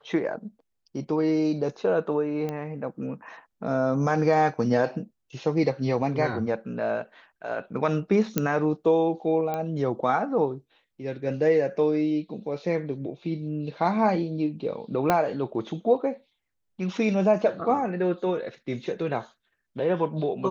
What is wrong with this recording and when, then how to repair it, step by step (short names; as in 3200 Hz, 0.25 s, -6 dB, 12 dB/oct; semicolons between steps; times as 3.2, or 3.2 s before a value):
2.49 pop -19 dBFS
8.38 pop -8 dBFS
9.54 pop -17 dBFS
15.1 pop -8 dBFS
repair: de-click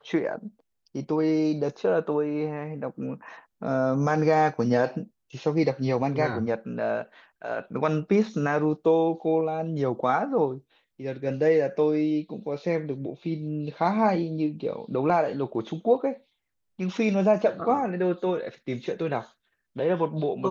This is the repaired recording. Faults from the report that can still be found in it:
2.49 pop
9.54 pop
15.1 pop